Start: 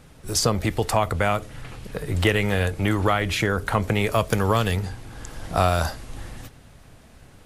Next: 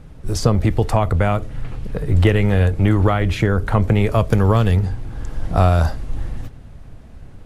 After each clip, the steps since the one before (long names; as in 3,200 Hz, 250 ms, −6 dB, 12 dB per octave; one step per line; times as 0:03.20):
spectral tilt −2.5 dB per octave
level +1 dB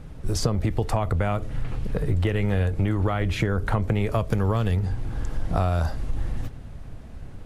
downward compressor 5 to 1, threshold −20 dBFS, peak gain reduction 10.5 dB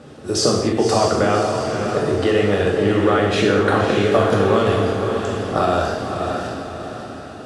loudspeaker in its box 280–9,000 Hz, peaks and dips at 400 Hz +3 dB, 930 Hz −6 dB, 2,200 Hz −8 dB, 6,900 Hz −3 dB
feedback delay with all-pass diffusion 571 ms, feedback 46%, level −5.5 dB
reverb whose tail is shaped and stops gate 300 ms falling, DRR −2 dB
level +8 dB